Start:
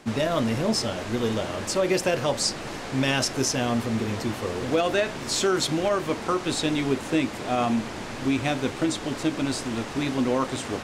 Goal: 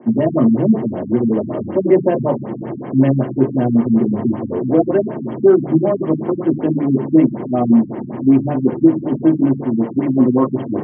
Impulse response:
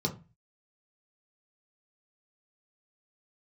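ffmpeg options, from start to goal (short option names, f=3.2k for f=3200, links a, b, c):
-filter_complex "[0:a]acrossover=split=160 2100:gain=0.0891 1 0.0891[a][b][c];[a][b][c]amix=inputs=3:normalize=0[d];[1:a]atrim=start_sample=2205,asetrate=37926,aresample=44100[e];[d][e]afir=irnorm=-1:irlink=0,afftfilt=real='re*lt(b*sr/1024,260*pow(3400/260,0.5+0.5*sin(2*PI*5.3*pts/sr)))':imag='im*lt(b*sr/1024,260*pow(3400/260,0.5+0.5*sin(2*PI*5.3*pts/sr)))':win_size=1024:overlap=0.75,volume=-1dB"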